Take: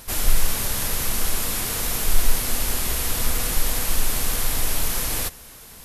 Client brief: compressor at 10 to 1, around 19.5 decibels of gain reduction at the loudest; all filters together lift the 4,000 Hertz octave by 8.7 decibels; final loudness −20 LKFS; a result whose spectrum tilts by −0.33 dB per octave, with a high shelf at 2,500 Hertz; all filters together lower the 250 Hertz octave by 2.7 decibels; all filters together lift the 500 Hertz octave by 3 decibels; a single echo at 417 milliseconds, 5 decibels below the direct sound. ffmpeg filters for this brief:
ffmpeg -i in.wav -af "equalizer=frequency=250:width_type=o:gain=-5,equalizer=frequency=500:width_type=o:gain=4.5,highshelf=frequency=2500:gain=6.5,equalizer=frequency=4000:width_type=o:gain=5,acompressor=threshold=-29dB:ratio=10,aecho=1:1:417:0.562,volume=10dB" out.wav

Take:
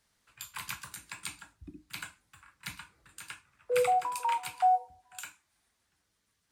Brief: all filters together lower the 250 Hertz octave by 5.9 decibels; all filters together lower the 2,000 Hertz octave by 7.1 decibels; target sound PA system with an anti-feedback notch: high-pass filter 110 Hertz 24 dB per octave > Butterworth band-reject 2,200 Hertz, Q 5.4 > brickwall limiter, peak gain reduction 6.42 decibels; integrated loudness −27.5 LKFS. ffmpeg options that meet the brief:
ffmpeg -i in.wav -af "highpass=frequency=110:width=0.5412,highpass=frequency=110:width=1.3066,asuperstop=centerf=2200:order=8:qfactor=5.4,equalizer=frequency=250:width_type=o:gain=-8.5,equalizer=frequency=2000:width_type=o:gain=-7.5,volume=11dB,alimiter=limit=-14.5dB:level=0:latency=1" out.wav

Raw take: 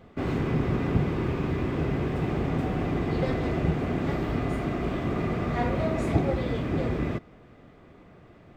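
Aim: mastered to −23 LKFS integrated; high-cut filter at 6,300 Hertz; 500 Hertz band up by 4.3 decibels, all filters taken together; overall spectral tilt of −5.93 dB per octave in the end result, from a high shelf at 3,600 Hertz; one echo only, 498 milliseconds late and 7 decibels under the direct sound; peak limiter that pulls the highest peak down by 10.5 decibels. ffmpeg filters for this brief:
ffmpeg -i in.wav -af "lowpass=6300,equalizer=frequency=500:width_type=o:gain=5.5,highshelf=frequency=3600:gain=4,alimiter=limit=-18.5dB:level=0:latency=1,aecho=1:1:498:0.447,volume=4.5dB" out.wav

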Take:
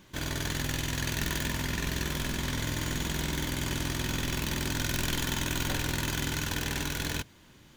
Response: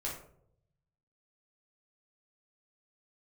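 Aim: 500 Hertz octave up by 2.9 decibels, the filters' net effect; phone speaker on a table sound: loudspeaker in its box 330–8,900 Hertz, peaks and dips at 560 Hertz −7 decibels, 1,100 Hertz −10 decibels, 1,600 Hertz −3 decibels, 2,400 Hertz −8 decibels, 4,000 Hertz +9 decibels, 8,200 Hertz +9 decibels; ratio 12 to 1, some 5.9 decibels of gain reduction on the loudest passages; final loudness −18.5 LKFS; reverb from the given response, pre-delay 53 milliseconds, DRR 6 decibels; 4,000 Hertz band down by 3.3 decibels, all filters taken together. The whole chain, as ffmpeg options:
-filter_complex "[0:a]equalizer=frequency=500:width_type=o:gain=8.5,equalizer=frequency=4000:width_type=o:gain=-8.5,acompressor=threshold=-32dB:ratio=12,asplit=2[link_01][link_02];[1:a]atrim=start_sample=2205,adelay=53[link_03];[link_02][link_03]afir=irnorm=-1:irlink=0,volume=-8dB[link_04];[link_01][link_04]amix=inputs=2:normalize=0,highpass=frequency=330:width=0.5412,highpass=frequency=330:width=1.3066,equalizer=frequency=560:width_type=q:width=4:gain=-7,equalizer=frequency=1100:width_type=q:width=4:gain=-10,equalizer=frequency=1600:width_type=q:width=4:gain=-3,equalizer=frequency=2400:width_type=q:width=4:gain=-8,equalizer=frequency=4000:width_type=q:width=4:gain=9,equalizer=frequency=8200:width_type=q:width=4:gain=9,lowpass=frequency=8900:width=0.5412,lowpass=frequency=8900:width=1.3066,volume=21dB"

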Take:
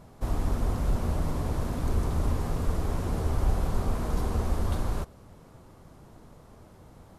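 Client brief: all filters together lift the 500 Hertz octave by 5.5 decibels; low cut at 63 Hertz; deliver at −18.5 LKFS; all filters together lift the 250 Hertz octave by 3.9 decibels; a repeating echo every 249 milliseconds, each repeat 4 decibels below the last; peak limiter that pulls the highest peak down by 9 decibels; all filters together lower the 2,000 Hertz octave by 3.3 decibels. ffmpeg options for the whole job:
ffmpeg -i in.wav -af "highpass=63,equalizer=frequency=250:width_type=o:gain=3.5,equalizer=frequency=500:width_type=o:gain=6,equalizer=frequency=2000:width_type=o:gain=-5,alimiter=level_in=0.5dB:limit=-24dB:level=0:latency=1,volume=-0.5dB,aecho=1:1:249|498|747|996|1245|1494|1743|1992|2241:0.631|0.398|0.25|0.158|0.0994|0.0626|0.0394|0.0249|0.0157,volume=13.5dB" out.wav

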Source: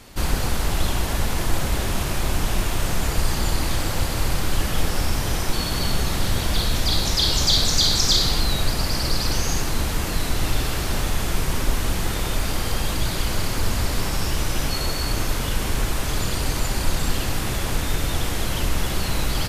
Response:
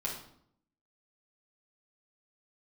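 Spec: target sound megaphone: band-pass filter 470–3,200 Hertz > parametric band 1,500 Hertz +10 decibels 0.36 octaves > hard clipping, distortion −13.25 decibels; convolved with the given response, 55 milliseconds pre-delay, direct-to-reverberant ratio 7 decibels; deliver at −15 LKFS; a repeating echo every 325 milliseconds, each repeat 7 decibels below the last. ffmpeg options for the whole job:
-filter_complex "[0:a]aecho=1:1:325|650|975|1300|1625:0.447|0.201|0.0905|0.0407|0.0183,asplit=2[link_01][link_02];[1:a]atrim=start_sample=2205,adelay=55[link_03];[link_02][link_03]afir=irnorm=-1:irlink=0,volume=-10.5dB[link_04];[link_01][link_04]amix=inputs=2:normalize=0,highpass=470,lowpass=3200,equalizer=frequency=1500:width_type=o:width=0.36:gain=10,asoftclip=type=hard:threshold=-24dB,volume=12.5dB"

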